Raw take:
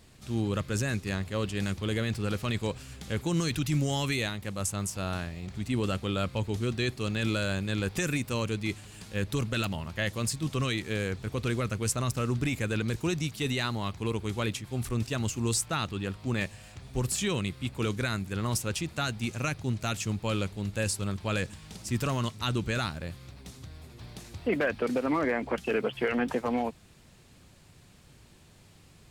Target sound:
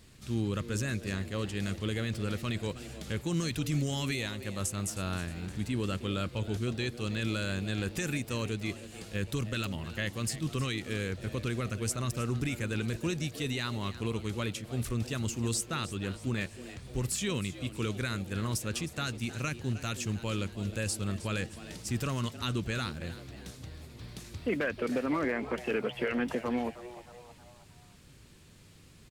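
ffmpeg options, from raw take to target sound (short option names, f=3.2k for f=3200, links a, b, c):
-filter_complex "[0:a]equalizer=f=750:t=o:w=0.83:g=-6,alimiter=limit=-21.5dB:level=0:latency=1:release=430,asplit=5[a][b][c][d][e];[b]adelay=313,afreqshift=120,volume=-15dB[f];[c]adelay=626,afreqshift=240,volume=-21.6dB[g];[d]adelay=939,afreqshift=360,volume=-28.1dB[h];[e]adelay=1252,afreqshift=480,volume=-34.7dB[i];[a][f][g][h][i]amix=inputs=5:normalize=0"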